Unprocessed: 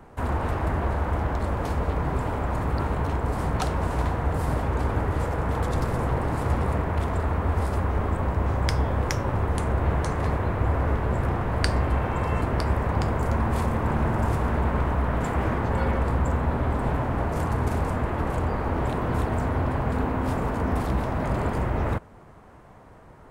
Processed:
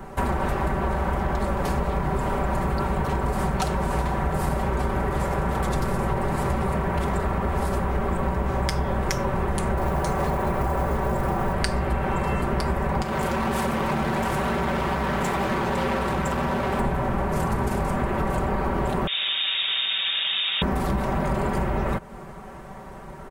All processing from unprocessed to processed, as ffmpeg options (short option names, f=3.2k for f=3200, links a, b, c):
-filter_complex "[0:a]asettb=1/sr,asplit=3[a][b][c];[a]atrim=end=9.774[d];[b]atrim=start=9.77:end=11.53,asetpts=PTS-STARTPTS,afade=t=in:d=0.004:c=qsin,afade=t=out:st=1.756:d=0.004:c=qsin,equalizer=f=740:w=0.88:g=5.5,acrossover=split=340|3000[e][f][g];[f]acompressor=threshold=-26dB:ratio=2:attack=3.2:release=140:knee=2.83:detection=peak[h];[e][h][g]amix=inputs=3:normalize=0,acrusher=bits=8:mode=log:mix=0:aa=0.000001[i];[c]atrim=start=11.526[j];[d][i]acrossfade=d=0.004:c1=hsin:c2=qsin[k];[k][j]acrossfade=d=0.004:c1=qsin:c2=hsin,asettb=1/sr,asplit=3[l][m][n];[l]atrim=end=13.024[o];[m]atrim=start=13.02:end=16.8,asetpts=PTS-STARTPTS,afade=t=in:d=0.004:c=qsin,afade=t=out:st=3.776:d=0.004:c=qsin,highpass=f=150:p=1,volume=28.5dB,asoftclip=hard,volume=-28.5dB[p];[n]atrim=start=16.796[q];[o][p]acrossfade=d=0.004:c1=hsin:c2=qsin[r];[r][q]acrossfade=d=0.004:c1=qsin:c2=hsin,asettb=1/sr,asplit=3[s][t][u];[s]atrim=end=19.074[v];[t]atrim=start=19.07:end=20.62,asetpts=PTS-STARTPTS,afade=t=in:d=0.004:c=qsin,afade=t=out:st=1.546:d=0.004:c=qsin,aecho=1:1:5.1:0.94,atrim=end_sample=68355,volume=31dB,asoftclip=hard,volume=-31dB,lowpass=f=3.2k:t=q:w=0.5098,lowpass=f=3.2k:t=q:w=0.6013,lowpass=f=3.2k:t=q:w=0.9,lowpass=f=3.2k:t=q:w=2.563,afreqshift=-3800[w];[u]atrim=start=20.616[x];[v][w]acrossfade=d=0.004:c1=hsin:c2=qsin[y];[y][x]acrossfade=d=0.004:c1=qsin:c2=hsin,highshelf=f=8k:g=5,aecho=1:1:5.2:0.71,acompressor=threshold=-29dB:ratio=6,volume=8dB"